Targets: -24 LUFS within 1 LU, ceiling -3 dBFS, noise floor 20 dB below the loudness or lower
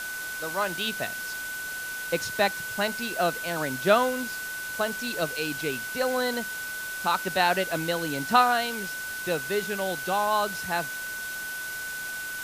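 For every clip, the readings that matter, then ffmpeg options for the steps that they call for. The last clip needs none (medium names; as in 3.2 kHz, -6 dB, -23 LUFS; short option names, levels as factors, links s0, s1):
steady tone 1.5 kHz; tone level -33 dBFS; noise floor -35 dBFS; noise floor target -48 dBFS; loudness -27.5 LUFS; peak level -6.0 dBFS; loudness target -24.0 LUFS
-> -af "bandreject=f=1500:w=30"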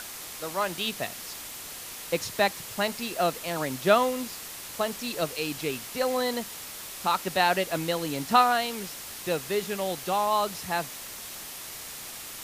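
steady tone not found; noise floor -41 dBFS; noise floor target -49 dBFS
-> -af "afftdn=nr=8:nf=-41"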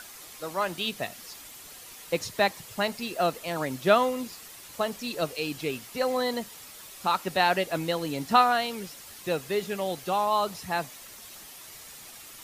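noise floor -46 dBFS; noise floor target -48 dBFS
-> -af "afftdn=nr=6:nf=-46"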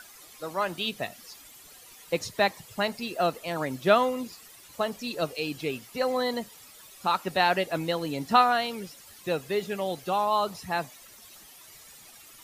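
noise floor -51 dBFS; loudness -28.0 LUFS; peak level -7.5 dBFS; loudness target -24.0 LUFS
-> -af "volume=1.58"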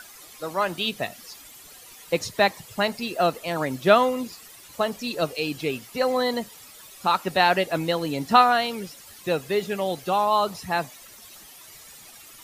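loudness -24.0 LUFS; peak level -3.5 dBFS; noise floor -47 dBFS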